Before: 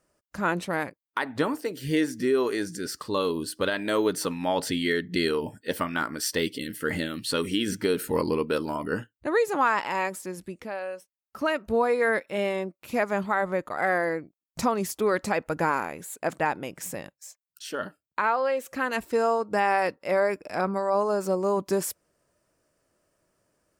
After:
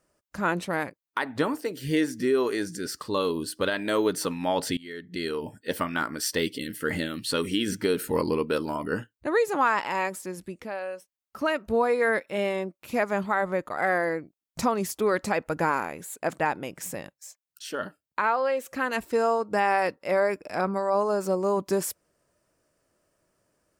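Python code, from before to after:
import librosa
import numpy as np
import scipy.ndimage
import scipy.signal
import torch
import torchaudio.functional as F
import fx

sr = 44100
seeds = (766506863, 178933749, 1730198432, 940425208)

y = fx.edit(x, sr, fx.fade_in_from(start_s=4.77, length_s=0.98, floor_db=-23.0), tone=tone)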